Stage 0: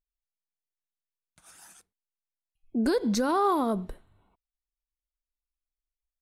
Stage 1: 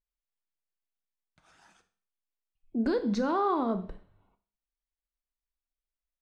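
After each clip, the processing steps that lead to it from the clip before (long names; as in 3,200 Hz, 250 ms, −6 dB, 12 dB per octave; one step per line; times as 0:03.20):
high-frequency loss of the air 160 metres
four-comb reverb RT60 0.42 s, combs from 27 ms, DRR 10 dB
level −2.5 dB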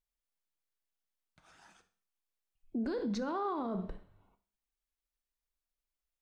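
brickwall limiter −28.5 dBFS, peak gain reduction 10.5 dB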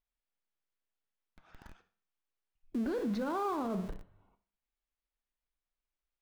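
low-pass filter 3,300 Hz 12 dB per octave
in parallel at −7 dB: comparator with hysteresis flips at −53 dBFS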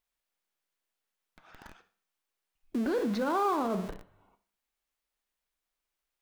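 low-shelf EQ 190 Hz −10.5 dB
level +7 dB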